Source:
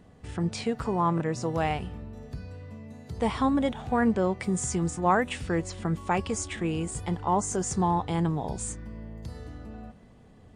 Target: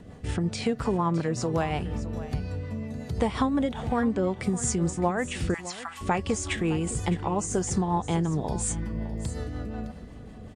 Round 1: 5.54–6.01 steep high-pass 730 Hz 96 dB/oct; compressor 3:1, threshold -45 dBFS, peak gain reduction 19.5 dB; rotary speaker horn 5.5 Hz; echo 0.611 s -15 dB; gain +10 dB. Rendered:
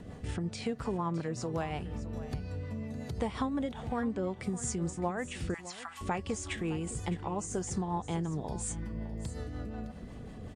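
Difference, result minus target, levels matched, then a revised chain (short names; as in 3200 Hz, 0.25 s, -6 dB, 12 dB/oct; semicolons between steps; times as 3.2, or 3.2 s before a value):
compressor: peak gain reduction +7.5 dB
5.54–6.01 steep high-pass 730 Hz 96 dB/oct; compressor 3:1, threshold -33.5 dBFS, peak gain reduction 12 dB; rotary speaker horn 5.5 Hz; echo 0.611 s -15 dB; gain +10 dB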